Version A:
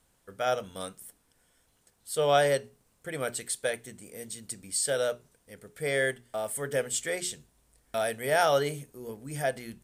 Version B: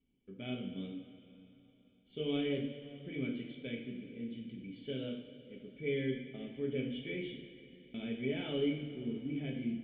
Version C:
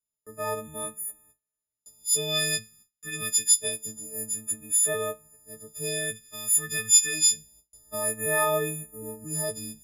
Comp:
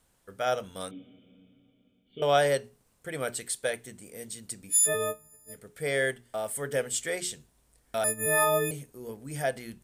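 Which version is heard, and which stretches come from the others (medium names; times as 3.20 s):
A
0.91–2.22 s: from B
4.71–5.55 s: from C, crossfade 0.10 s
8.04–8.71 s: from C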